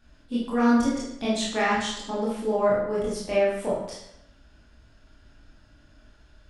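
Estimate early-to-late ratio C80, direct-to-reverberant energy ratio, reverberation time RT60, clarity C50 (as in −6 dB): 5.0 dB, −7.0 dB, 0.80 s, 1.0 dB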